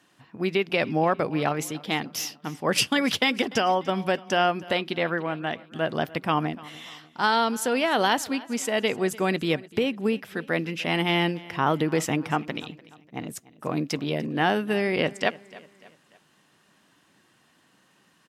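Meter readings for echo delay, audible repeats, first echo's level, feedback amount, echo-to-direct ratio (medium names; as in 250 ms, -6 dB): 295 ms, 3, -20.5 dB, 44%, -19.5 dB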